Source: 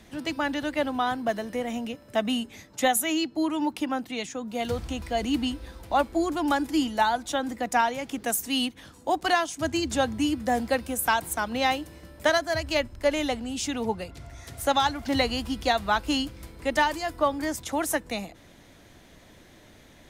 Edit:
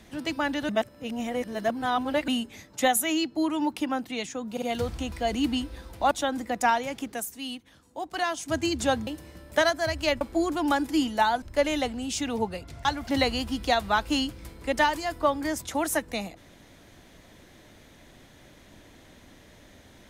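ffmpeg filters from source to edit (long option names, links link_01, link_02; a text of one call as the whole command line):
ffmpeg -i in.wav -filter_complex "[0:a]asplit=12[link_01][link_02][link_03][link_04][link_05][link_06][link_07][link_08][link_09][link_10][link_11][link_12];[link_01]atrim=end=0.692[link_13];[link_02]atrim=start=0.688:end=2.282,asetpts=PTS-STARTPTS,areverse[link_14];[link_03]atrim=start=2.278:end=4.572[link_15];[link_04]atrim=start=4.518:end=4.572[link_16];[link_05]atrim=start=4.518:end=6.012[link_17];[link_06]atrim=start=7.218:end=8.53,asetpts=PTS-STARTPTS,afade=type=out:start_time=0.862:duration=0.45:curve=qua:silence=0.334965[link_18];[link_07]atrim=start=8.53:end=9.08,asetpts=PTS-STARTPTS,volume=-9.5dB[link_19];[link_08]atrim=start=9.08:end=10.182,asetpts=PTS-STARTPTS,afade=type=in:duration=0.45:curve=qua:silence=0.334965[link_20];[link_09]atrim=start=11.748:end=12.892[link_21];[link_10]atrim=start=6.008:end=7.222[link_22];[link_11]atrim=start=12.888:end=14.322[link_23];[link_12]atrim=start=14.828[link_24];[link_13][link_14]acrossfade=duration=0.004:curve1=hsin:curve2=hsin[link_25];[link_25][link_15]acrossfade=duration=0.004:curve1=hsin:curve2=hsin[link_26];[link_26][link_16]acrossfade=duration=0.004:curve1=hsin:curve2=hsin[link_27];[link_27][link_17]acrossfade=duration=0.004:curve1=hsin:curve2=hsin[link_28];[link_18][link_19][link_20]concat=n=3:v=0:a=1[link_29];[link_28][link_29]acrossfade=duration=0.004:curve1=hsin:curve2=hsin[link_30];[link_30][link_21]acrossfade=duration=0.004:curve1=hsin:curve2=hsin[link_31];[link_31][link_22]acrossfade=duration=0.004:curve1=hsin:curve2=hsin[link_32];[link_32][link_23]acrossfade=duration=0.004:curve1=hsin:curve2=hsin[link_33];[link_33][link_24]acrossfade=duration=0.004:curve1=hsin:curve2=hsin" out.wav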